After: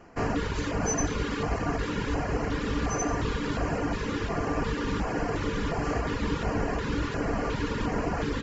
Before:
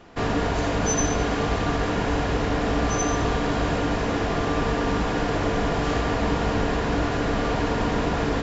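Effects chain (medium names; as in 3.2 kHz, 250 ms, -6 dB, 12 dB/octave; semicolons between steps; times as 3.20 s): reverb removal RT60 0.74 s; LFO notch square 1.4 Hz 700–3600 Hz; trim -2.5 dB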